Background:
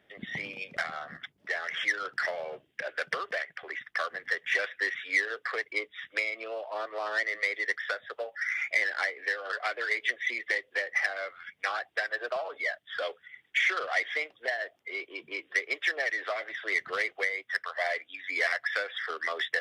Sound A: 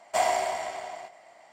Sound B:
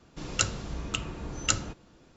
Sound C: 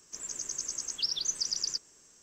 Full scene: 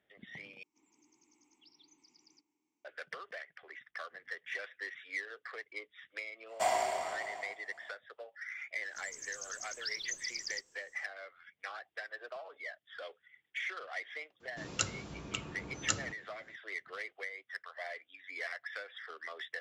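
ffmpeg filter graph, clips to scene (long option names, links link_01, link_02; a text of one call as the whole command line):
ffmpeg -i bed.wav -i cue0.wav -i cue1.wav -i cue2.wav -filter_complex "[3:a]asplit=2[link_01][link_02];[0:a]volume=-12.5dB[link_03];[link_01]asplit=3[link_04][link_05][link_06];[link_04]bandpass=frequency=300:width_type=q:width=8,volume=0dB[link_07];[link_05]bandpass=frequency=870:width_type=q:width=8,volume=-6dB[link_08];[link_06]bandpass=frequency=2240:width_type=q:width=8,volume=-9dB[link_09];[link_07][link_08][link_09]amix=inputs=3:normalize=0[link_10];[2:a]highpass=100[link_11];[link_03]asplit=2[link_12][link_13];[link_12]atrim=end=0.634[link_14];[link_10]atrim=end=2.22,asetpts=PTS-STARTPTS,volume=-6dB[link_15];[link_13]atrim=start=2.846[link_16];[1:a]atrim=end=1.52,asetpts=PTS-STARTPTS,volume=-6dB,afade=type=in:duration=0.05,afade=type=out:start_time=1.47:duration=0.05,adelay=6460[link_17];[link_02]atrim=end=2.22,asetpts=PTS-STARTPTS,volume=-9.5dB,afade=type=in:duration=0.004:curve=hsin,afade=type=out:start_time=2.216:duration=0.004:curve=hsin,adelay=8830[link_18];[link_11]atrim=end=2.16,asetpts=PTS-STARTPTS,volume=-6.5dB,afade=type=in:duration=0.004:curve=hsin,afade=type=out:start_time=2.156:duration=0.004:curve=hsin,adelay=14400[link_19];[link_14][link_15]acrossfade=duration=0.004:curve1=hsin:curve2=hsin[link_20];[link_20][link_16]acrossfade=duration=0.004:curve1=hsin:curve2=hsin[link_21];[link_21][link_17][link_18][link_19]amix=inputs=4:normalize=0" out.wav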